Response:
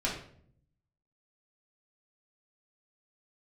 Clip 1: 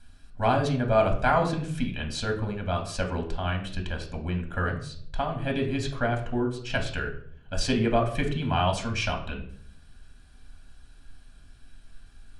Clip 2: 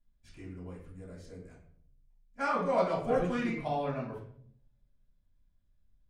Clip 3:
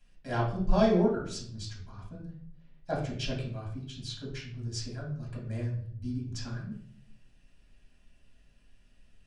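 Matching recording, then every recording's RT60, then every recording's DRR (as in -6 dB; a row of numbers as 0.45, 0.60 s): 3; 0.60, 0.60, 0.60 s; 2.0, -9.0, -5.0 dB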